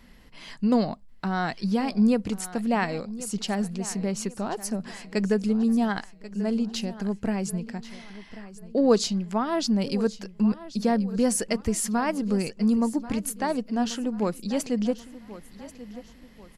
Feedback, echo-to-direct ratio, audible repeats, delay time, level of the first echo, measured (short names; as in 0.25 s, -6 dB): 38%, -15.5 dB, 3, 1.087 s, -16.0 dB